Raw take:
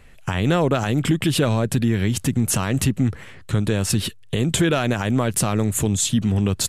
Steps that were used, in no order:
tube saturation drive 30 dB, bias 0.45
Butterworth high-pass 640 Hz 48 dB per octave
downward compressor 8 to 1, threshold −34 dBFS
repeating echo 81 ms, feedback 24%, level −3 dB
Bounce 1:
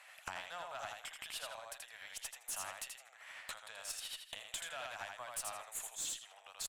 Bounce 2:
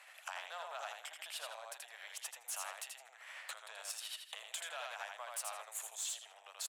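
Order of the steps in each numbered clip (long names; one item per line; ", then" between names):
repeating echo, then downward compressor, then Butterworth high-pass, then tube saturation
repeating echo, then downward compressor, then tube saturation, then Butterworth high-pass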